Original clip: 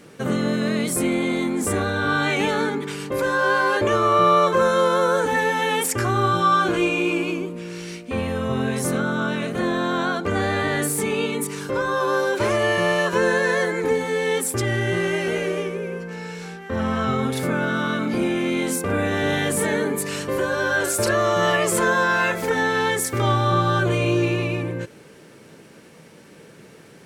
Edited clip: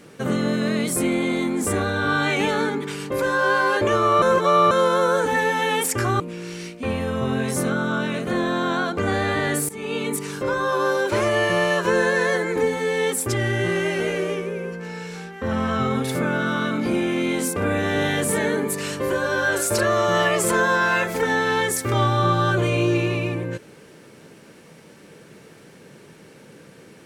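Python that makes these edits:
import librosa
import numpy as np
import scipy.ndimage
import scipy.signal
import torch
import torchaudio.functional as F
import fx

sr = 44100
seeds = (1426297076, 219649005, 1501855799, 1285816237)

y = fx.edit(x, sr, fx.reverse_span(start_s=4.22, length_s=0.49),
    fx.cut(start_s=6.2, length_s=1.28),
    fx.fade_in_from(start_s=10.97, length_s=0.37, floor_db=-18.5), tone=tone)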